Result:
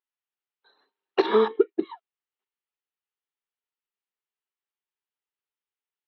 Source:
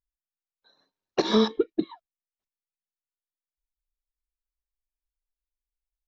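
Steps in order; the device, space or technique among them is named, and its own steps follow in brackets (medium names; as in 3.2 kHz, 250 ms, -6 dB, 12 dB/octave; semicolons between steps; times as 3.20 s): 1.26–1.85 s: low-pass 2.4 kHz 12 dB/octave; phone earpiece (cabinet simulation 370–3800 Hz, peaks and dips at 400 Hz +9 dB, 600 Hz -7 dB, 860 Hz +5 dB, 1.3 kHz +4 dB, 1.9 kHz +3 dB, 2.9 kHz +5 dB); trim +1 dB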